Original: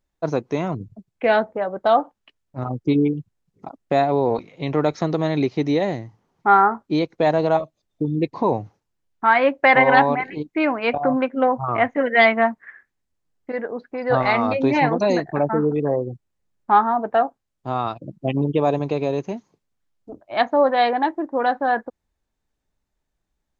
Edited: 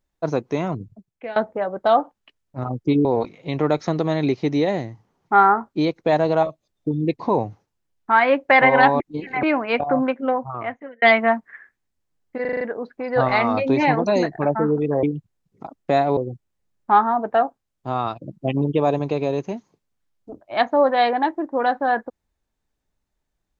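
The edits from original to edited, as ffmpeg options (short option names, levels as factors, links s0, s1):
-filter_complex "[0:a]asplit=13[s0][s1][s2][s3][s4][s5][s6][s7][s8][s9][s10][s11][s12];[s0]atrim=end=1.36,asetpts=PTS-STARTPTS,afade=t=out:st=0.73:d=0.63:silence=0.1[s13];[s1]atrim=start=1.36:end=3.052,asetpts=PTS-STARTPTS,afade=t=in:d=0.004:c=hsin:silence=0.1[s14];[s2]atrim=start=4.188:end=10.142[s15];[s3]atrim=start=10.138:end=10.572,asetpts=PTS-STARTPTS,areverse[s16];[s4]atrim=start=10.568:end=12.16,asetpts=PTS-STARTPTS,afade=t=out:st=0.582:d=1.01[s17];[s5]atrim=start=12.16:end=13.592,asetpts=PTS-STARTPTS,afade=t=in:d=0.004:c=hsin[s18];[s6]atrim=start=13.548:end=13.592[s19];[s7]atrim=start=13.548:end=13.592[s20];[s8]atrim=start=13.548:end=13.592[s21];[s9]atrim=start=13.548:end=13.592[s22];[s10]atrim=start=13.548:end=15.972[s23];[s11]atrim=start=3.048:end=4.192[s24];[s12]atrim=start=15.968[s25];[s13][s14]concat=n=2:v=0:a=1[s26];[s26][s15]acrossfade=d=0.004:c1=hsin:c2=hsin[s27];[s27][s16]acrossfade=d=0.004:c1=hsin:c2=hsin[s28];[s17][s18]concat=n=2:v=0:a=1[s29];[s28][s29]acrossfade=d=0.004:c1=hsin:c2=hsin[s30];[s30][s19]acrossfade=d=0.004:c1=hsin:c2=hsin[s31];[s31][s20]acrossfade=d=0.004:c1=hsin:c2=hsin[s32];[s32][s21]acrossfade=d=0.004:c1=hsin:c2=hsin[s33];[s33][s22]acrossfade=d=0.004:c1=hsin:c2=hsin[s34];[s34][s23]acrossfade=d=0.004:c1=hsin:c2=hsin[s35];[s35][s24]acrossfade=d=0.004:c1=hsin:c2=hsin[s36];[s36][s25]acrossfade=d=0.004:c1=hsin:c2=hsin"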